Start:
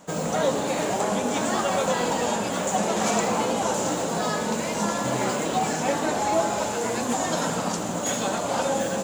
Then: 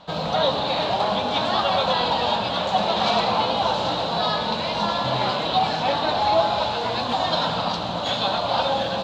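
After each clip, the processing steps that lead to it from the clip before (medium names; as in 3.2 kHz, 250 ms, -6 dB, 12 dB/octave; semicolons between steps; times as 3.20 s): FFT filter 100 Hz 0 dB, 240 Hz -11 dB, 420 Hz -11 dB, 680 Hz -2 dB, 1 kHz -1 dB, 2 kHz -8 dB, 4 kHz +8 dB, 7.1 kHz -28 dB; trim +6.5 dB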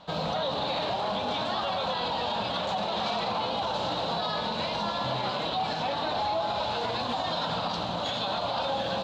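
peak limiter -17.5 dBFS, peak gain reduction 9 dB; trim -3.5 dB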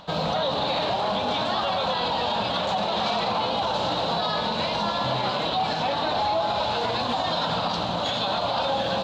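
upward compressor, threshold -52 dBFS; trim +4.5 dB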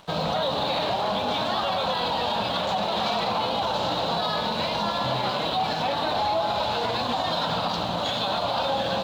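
crossover distortion -49 dBFS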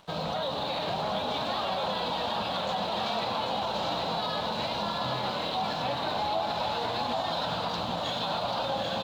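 delay 789 ms -5 dB; trim -6 dB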